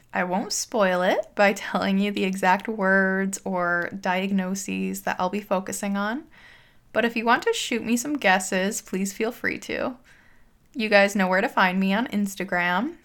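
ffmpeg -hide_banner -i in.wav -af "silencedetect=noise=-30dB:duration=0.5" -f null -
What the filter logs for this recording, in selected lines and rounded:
silence_start: 6.19
silence_end: 6.95 | silence_duration: 0.76
silence_start: 9.92
silence_end: 10.77 | silence_duration: 0.85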